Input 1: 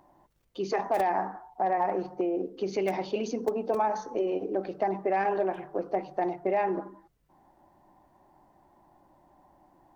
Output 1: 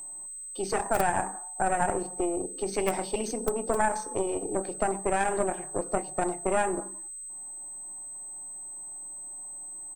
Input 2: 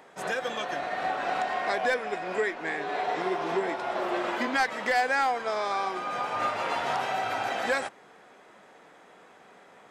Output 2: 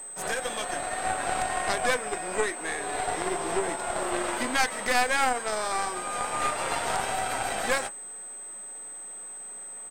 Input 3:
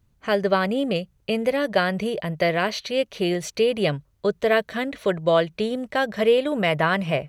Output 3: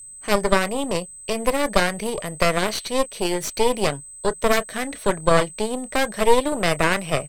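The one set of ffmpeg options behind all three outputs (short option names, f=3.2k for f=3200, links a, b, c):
-filter_complex "[0:a]acrossover=split=240|3100[a][b][c];[a]alimiter=level_in=9.5dB:limit=-24dB:level=0:latency=1,volume=-9.5dB[d];[b]asplit=2[e][f];[f]adelay=28,volume=-12.5dB[g];[e][g]amix=inputs=2:normalize=0[h];[c]crystalizer=i=1.5:c=0[i];[d][h][i]amix=inputs=3:normalize=0,aeval=exprs='val(0)+0.0141*sin(2*PI*8200*n/s)':c=same,aeval=exprs='0.562*(cos(1*acos(clip(val(0)/0.562,-1,1)))-cos(1*PI/2))+0.251*(cos(4*acos(clip(val(0)/0.562,-1,1)))-cos(4*PI/2))':c=same,volume=-1dB"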